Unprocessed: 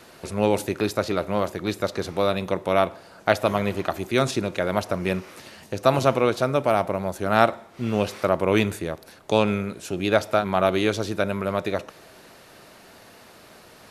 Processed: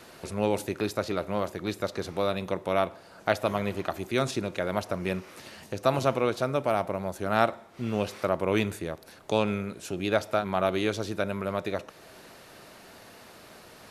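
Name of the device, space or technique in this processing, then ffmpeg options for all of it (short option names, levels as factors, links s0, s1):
parallel compression: -filter_complex "[0:a]asplit=2[s0][s1];[s1]acompressor=threshold=0.0112:ratio=6,volume=0.75[s2];[s0][s2]amix=inputs=2:normalize=0,volume=0.501"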